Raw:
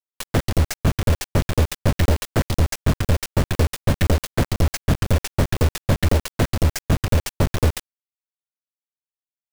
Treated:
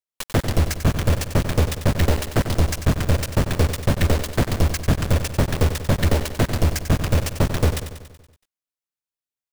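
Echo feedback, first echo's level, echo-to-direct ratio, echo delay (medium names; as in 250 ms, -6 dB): 57%, -10.0 dB, -8.5 dB, 94 ms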